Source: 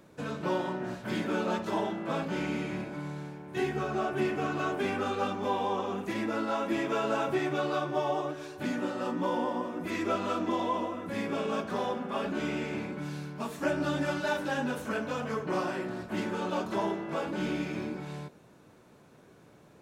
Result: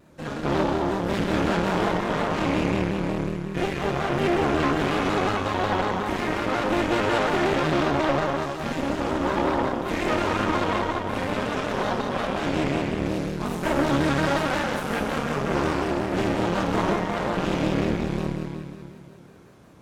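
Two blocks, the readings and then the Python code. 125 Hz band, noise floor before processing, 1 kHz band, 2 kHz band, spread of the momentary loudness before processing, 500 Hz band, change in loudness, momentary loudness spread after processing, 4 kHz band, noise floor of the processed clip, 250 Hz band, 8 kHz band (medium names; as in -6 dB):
+10.5 dB, -57 dBFS, +7.5 dB, +8.0 dB, 7 LU, +7.0 dB, +7.5 dB, 5 LU, +9.0 dB, -44 dBFS, +7.5 dB, +8.5 dB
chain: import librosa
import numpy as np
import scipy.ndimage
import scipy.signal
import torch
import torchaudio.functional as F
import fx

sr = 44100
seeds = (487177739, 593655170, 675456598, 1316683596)

y = fx.low_shelf(x, sr, hz=83.0, db=9.5)
y = fx.rev_schroeder(y, sr, rt60_s=2.6, comb_ms=27, drr_db=-3.0)
y = fx.cheby_harmonics(y, sr, harmonics=(6,), levels_db=(-12,), full_scale_db=-11.5)
y = fx.vibrato_shape(y, sr, shape='square', rate_hz=5.5, depth_cents=100.0)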